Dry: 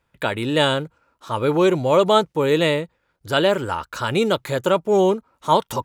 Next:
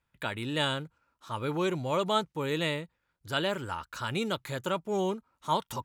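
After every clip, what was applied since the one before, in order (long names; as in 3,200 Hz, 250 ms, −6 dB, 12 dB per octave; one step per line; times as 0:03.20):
parametric band 490 Hz −6.5 dB 1.4 octaves
level −8.5 dB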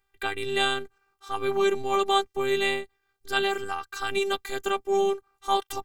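phases set to zero 393 Hz
level +7.5 dB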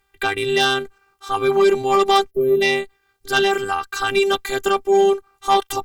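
gain on a spectral selection 0:02.30–0:02.62, 650–11,000 Hz −25 dB
harmonic generator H 5 −15 dB, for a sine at −6.5 dBFS
level +4.5 dB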